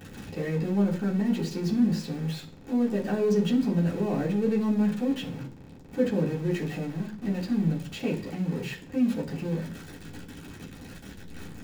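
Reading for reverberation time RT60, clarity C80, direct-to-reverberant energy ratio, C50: 0.45 s, 16.0 dB, −8.0 dB, 11.5 dB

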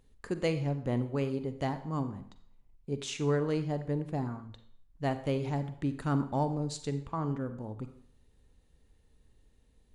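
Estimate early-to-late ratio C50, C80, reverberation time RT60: 11.5 dB, 14.5 dB, 0.60 s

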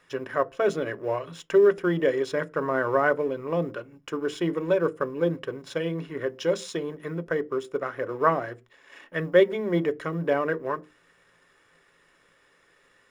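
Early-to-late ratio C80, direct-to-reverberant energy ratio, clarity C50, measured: 31.5 dB, 10.0 dB, 27.0 dB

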